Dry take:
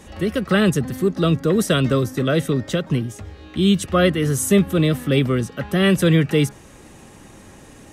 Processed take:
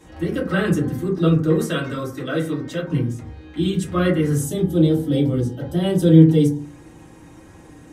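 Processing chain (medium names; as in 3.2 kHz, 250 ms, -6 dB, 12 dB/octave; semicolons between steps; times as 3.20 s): 1.56–2.81 s: bass shelf 350 Hz -9.5 dB; 4.43–6.60 s: time-frequency box 970–2900 Hz -11 dB; reverberation RT60 0.45 s, pre-delay 3 ms, DRR -5.5 dB; trim -9.5 dB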